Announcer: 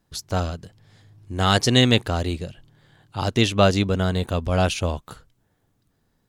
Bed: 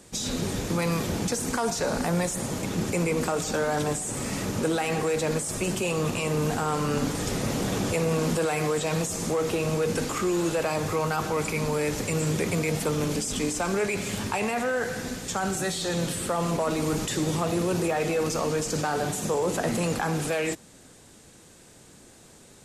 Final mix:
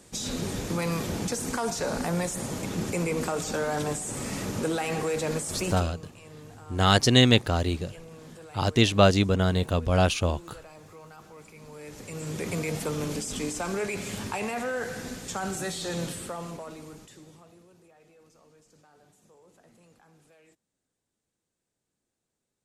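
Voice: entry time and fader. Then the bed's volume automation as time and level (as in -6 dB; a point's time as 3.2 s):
5.40 s, -1.5 dB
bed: 5.7 s -2.5 dB
5.92 s -21.5 dB
11.56 s -21.5 dB
12.53 s -4 dB
16.03 s -4 dB
17.76 s -32.5 dB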